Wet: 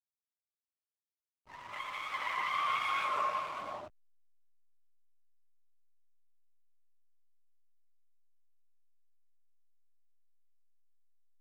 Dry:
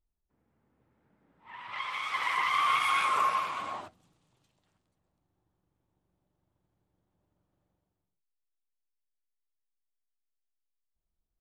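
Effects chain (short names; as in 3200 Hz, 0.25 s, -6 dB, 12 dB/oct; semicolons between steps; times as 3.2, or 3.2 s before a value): LPF 6400 Hz 12 dB/oct; bell 600 Hz +9.5 dB 0.23 oct; in parallel at -3 dB: compressor, threshold -40 dBFS, peak gain reduction 16 dB; on the sum: backlash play -39.5 dBFS; gain -7 dB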